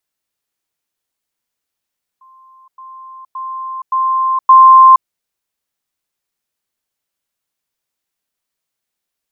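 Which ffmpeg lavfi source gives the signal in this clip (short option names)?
-f lavfi -i "aevalsrc='pow(10,(-41.5+10*floor(t/0.57))/20)*sin(2*PI*1050*t)*clip(min(mod(t,0.57),0.47-mod(t,0.57))/0.005,0,1)':d=2.85:s=44100"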